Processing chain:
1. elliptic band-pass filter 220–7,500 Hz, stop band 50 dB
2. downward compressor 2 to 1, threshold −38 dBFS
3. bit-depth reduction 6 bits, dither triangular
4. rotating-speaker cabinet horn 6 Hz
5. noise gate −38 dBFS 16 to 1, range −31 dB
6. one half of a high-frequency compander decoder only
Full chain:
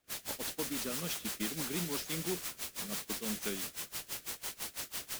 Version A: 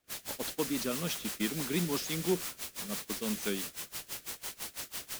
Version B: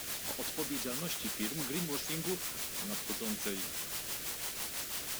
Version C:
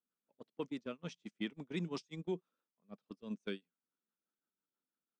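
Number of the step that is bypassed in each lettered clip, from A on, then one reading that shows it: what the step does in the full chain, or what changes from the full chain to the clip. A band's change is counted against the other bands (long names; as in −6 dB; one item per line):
2, average gain reduction 3.5 dB
5, change in momentary loudness spread −3 LU
3, change in crest factor +2.5 dB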